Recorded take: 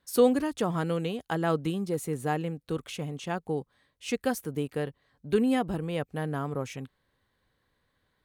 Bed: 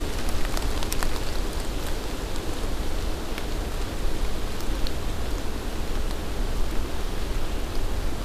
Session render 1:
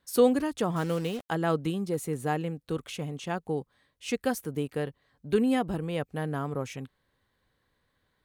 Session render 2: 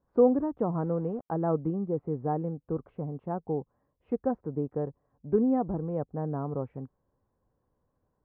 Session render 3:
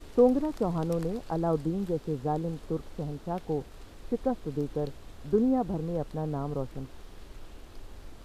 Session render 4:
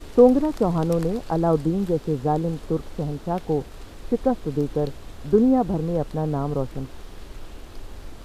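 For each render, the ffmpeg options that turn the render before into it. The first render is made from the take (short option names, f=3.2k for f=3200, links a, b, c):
-filter_complex "[0:a]asettb=1/sr,asplit=3[a][b][c];[a]atrim=end=0.764[d];[b]atrim=start=0.76:end=1.29,asetpts=PTS-STARTPTS,afade=t=in:d=0.004:c=qsin,afade=t=out:st=0.526:d=0.004:c=qsin,acrusher=bits=6:mix=0:aa=0.5[e];[c]atrim=start=1.286[f];[d][e]acrossfade=d=0.004:c1=hsin:c2=qsin[g];[g][f]acrossfade=d=0.004:c1=qsin:c2=hsin"
-af "lowpass=f=1k:w=0.5412,lowpass=f=1k:w=1.3066"
-filter_complex "[1:a]volume=-19dB[a];[0:a][a]amix=inputs=2:normalize=0"
-af "volume=7.5dB"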